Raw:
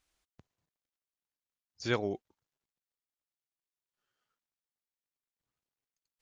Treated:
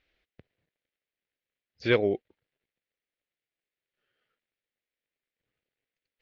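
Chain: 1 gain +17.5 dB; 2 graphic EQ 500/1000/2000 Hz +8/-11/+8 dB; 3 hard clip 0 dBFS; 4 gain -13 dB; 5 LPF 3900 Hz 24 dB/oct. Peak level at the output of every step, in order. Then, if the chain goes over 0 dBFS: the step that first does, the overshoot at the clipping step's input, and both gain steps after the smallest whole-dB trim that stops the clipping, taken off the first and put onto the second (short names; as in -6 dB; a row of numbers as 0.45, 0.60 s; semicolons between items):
+1.5, +4.5, 0.0, -13.0, -12.0 dBFS; step 1, 4.5 dB; step 1 +12.5 dB, step 4 -8 dB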